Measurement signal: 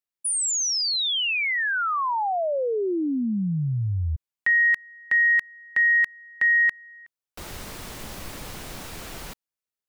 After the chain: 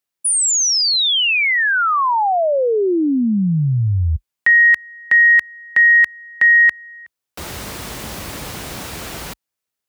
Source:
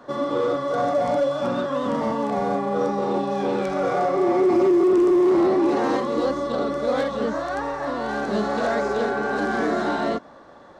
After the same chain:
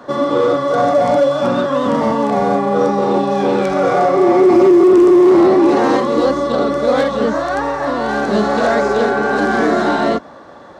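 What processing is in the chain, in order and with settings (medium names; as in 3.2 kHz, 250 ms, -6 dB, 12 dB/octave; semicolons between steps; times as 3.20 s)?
high-pass 46 Hz 24 dB/octave; trim +8.5 dB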